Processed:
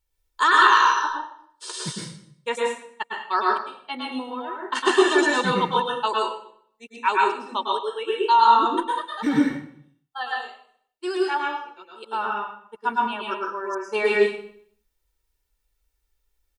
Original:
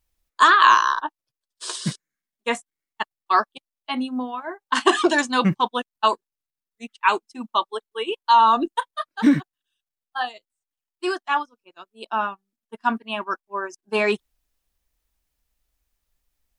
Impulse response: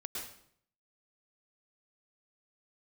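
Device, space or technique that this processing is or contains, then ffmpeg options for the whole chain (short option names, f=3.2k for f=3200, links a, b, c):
microphone above a desk: -filter_complex "[0:a]aecho=1:1:2.2:0.52[a];[1:a]atrim=start_sample=2205[b];[a][b]afir=irnorm=-1:irlink=0,volume=-1dB"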